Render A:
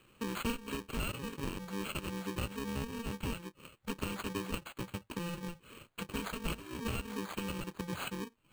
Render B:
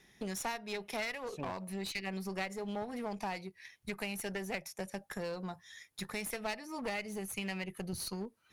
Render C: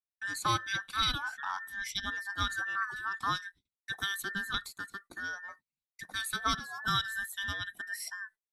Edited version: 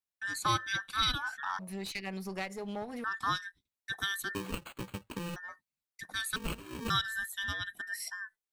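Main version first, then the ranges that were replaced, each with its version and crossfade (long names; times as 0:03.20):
C
0:01.59–0:03.04: punch in from B
0:04.35–0:05.36: punch in from A
0:06.36–0:06.90: punch in from A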